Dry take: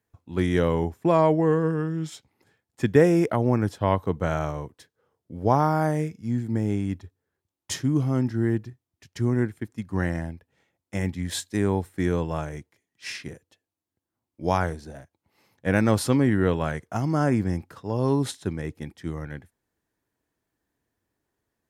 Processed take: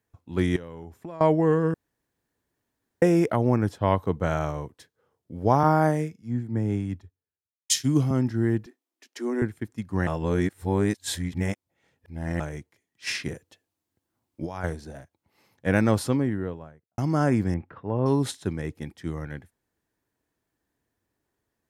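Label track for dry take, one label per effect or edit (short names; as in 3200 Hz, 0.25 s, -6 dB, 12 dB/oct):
0.560000	1.210000	compressor 5:1, threshold -37 dBFS
1.740000	3.020000	room tone
3.560000	4.400000	mismatched tape noise reduction decoder only
5.630000	8.110000	three-band expander depth 100%
8.660000	9.420000	steep high-pass 250 Hz 48 dB/oct
10.070000	12.400000	reverse
13.070000	14.640000	negative-ratio compressor -31 dBFS
15.680000	16.980000	studio fade out
17.540000	18.060000	LPF 2500 Hz 24 dB/oct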